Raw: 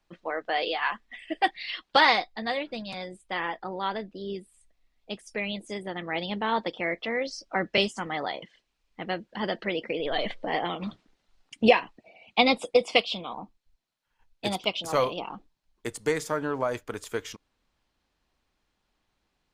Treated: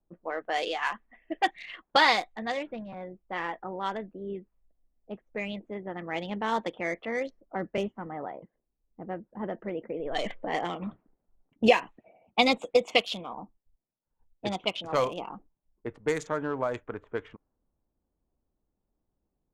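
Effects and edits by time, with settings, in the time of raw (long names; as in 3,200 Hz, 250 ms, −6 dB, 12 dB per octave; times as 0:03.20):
0:07.30–0:10.15: head-to-tape spacing loss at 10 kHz 43 dB
whole clip: adaptive Wiener filter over 9 samples; low-pass that shuts in the quiet parts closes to 540 Hz, open at −22.5 dBFS; dynamic equaliser 6,800 Hz, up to +8 dB, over −58 dBFS, Q 3.1; level −1.5 dB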